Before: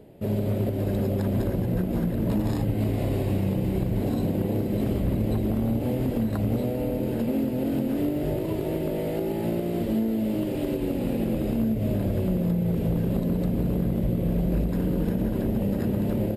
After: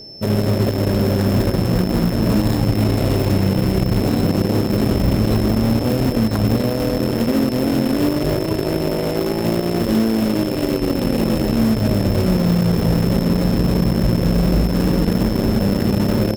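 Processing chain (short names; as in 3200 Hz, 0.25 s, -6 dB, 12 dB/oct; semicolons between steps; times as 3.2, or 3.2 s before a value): in parallel at -9 dB: bit-crush 4-bit; on the sum: whine 5300 Hz -41 dBFS; gain +5.5 dB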